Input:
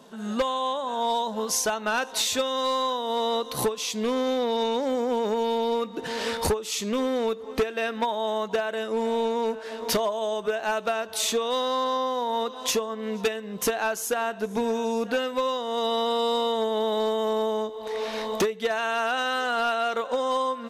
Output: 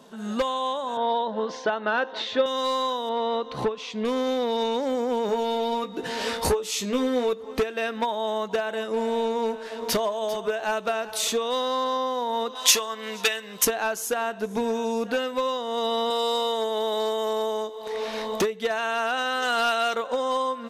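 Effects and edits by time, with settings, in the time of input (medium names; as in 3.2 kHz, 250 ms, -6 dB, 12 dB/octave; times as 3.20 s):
0.97–2.46 s: cabinet simulation 150–3600 Hz, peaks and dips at 330 Hz +7 dB, 540 Hz +5 dB, 1.7 kHz +4 dB, 2.5 kHz -6 dB
3.09–4.05 s: low-pass 2.9 kHz
5.27–7.33 s: doubling 16 ms -5.5 dB
8.27–11.28 s: delay 396 ms -15.5 dB
12.55–13.65 s: tilt shelf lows -10 dB, about 730 Hz
16.10–17.87 s: tone controls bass -10 dB, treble +5 dB
19.42–19.95 s: treble shelf 2.4 kHz +8.5 dB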